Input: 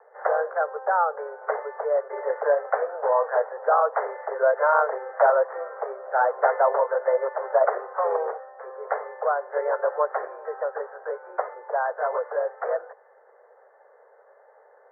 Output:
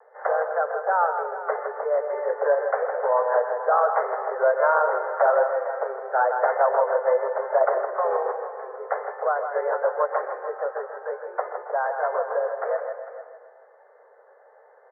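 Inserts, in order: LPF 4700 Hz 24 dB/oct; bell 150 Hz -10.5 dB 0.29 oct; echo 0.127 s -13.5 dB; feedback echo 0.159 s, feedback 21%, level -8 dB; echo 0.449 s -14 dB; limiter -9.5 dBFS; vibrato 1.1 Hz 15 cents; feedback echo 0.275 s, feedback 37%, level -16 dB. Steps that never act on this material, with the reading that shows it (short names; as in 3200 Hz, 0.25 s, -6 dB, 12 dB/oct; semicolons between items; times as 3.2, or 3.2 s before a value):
LPF 4700 Hz: input band ends at 1900 Hz; bell 150 Hz: input band starts at 360 Hz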